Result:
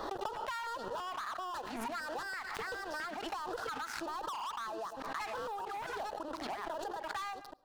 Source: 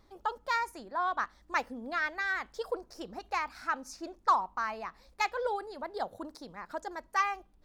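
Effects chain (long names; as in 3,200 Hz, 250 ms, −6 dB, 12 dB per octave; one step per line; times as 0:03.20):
delay that plays each chunk backwards 628 ms, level −2 dB
three-way crossover with the lows and the highs turned down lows −23 dB, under 380 Hz, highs −14 dB, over 2,900 Hz
leveller curve on the samples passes 5
auto-filter notch square 1.5 Hz 510–2,200 Hz
downward compressor 16 to 1, threshold −45 dBFS, peak gain reduction 28 dB
on a send at −20 dB: convolution reverb RT60 0.45 s, pre-delay 99 ms
on the sum: background raised ahead of every attack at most 33 dB per second
level +6.5 dB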